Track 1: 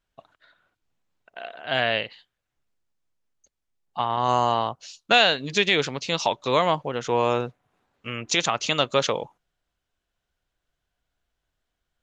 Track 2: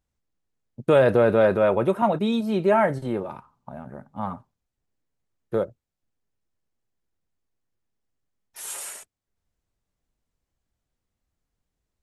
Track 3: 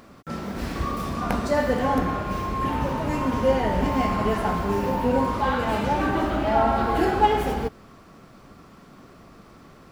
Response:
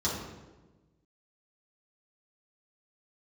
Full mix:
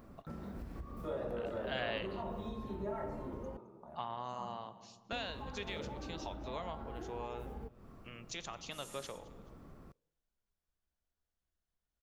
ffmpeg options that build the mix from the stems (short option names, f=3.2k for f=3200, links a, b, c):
-filter_complex "[0:a]volume=-7dB,afade=t=out:st=3.85:d=0.5:silence=0.316228,asplit=3[a][b][c];[b]volume=-21dB[d];[c]volume=-22.5dB[e];[1:a]equalizer=f=110:t=o:w=2.3:g=-8.5,bandreject=f=1.6k:w=12,adelay=150,volume=-17.5dB,asplit=2[f][g];[g]volume=-7dB[h];[2:a]equalizer=f=4.1k:w=0.38:g=-10.5,volume=-7.5dB,asplit=3[i][j][k];[i]atrim=end=3.57,asetpts=PTS-STARTPTS,afade=t=out:st=3.566:d=0.004:c=hsin[l];[j]atrim=start=3.57:end=5.12,asetpts=PTS-STARTPTS,volume=0[m];[k]atrim=start=5.12,asetpts=PTS-STARTPTS,afade=t=in:d=0.004:c=hsin[n];[l][m][n]concat=n=3:v=0:a=1[o];[f][o]amix=inputs=2:normalize=0,lowshelf=f=79:g=11,acompressor=threshold=-37dB:ratio=10,volume=0dB[p];[3:a]atrim=start_sample=2205[q];[d][h]amix=inputs=2:normalize=0[r];[r][q]afir=irnorm=-1:irlink=0[s];[e]aecho=0:1:215|430|645|860:1|0.3|0.09|0.027[t];[a][p][s][t]amix=inputs=4:normalize=0,acompressor=threshold=-49dB:ratio=1.5"